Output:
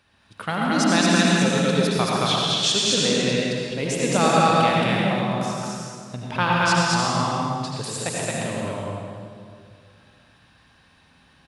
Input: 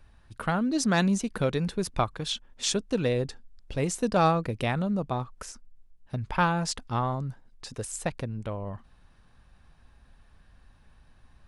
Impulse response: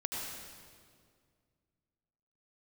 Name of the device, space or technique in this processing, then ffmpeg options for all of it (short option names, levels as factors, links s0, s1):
stadium PA: -filter_complex "[0:a]highpass=140,equalizer=f=3400:t=o:w=1.7:g=7.5,aecho=1:1:221.6|279.9:0.891|0.316[s0];[1:a]atrim=start_sample=2205[s1];[s0][s1]afir=irnorm=-1:irlink=0,volume=1.12"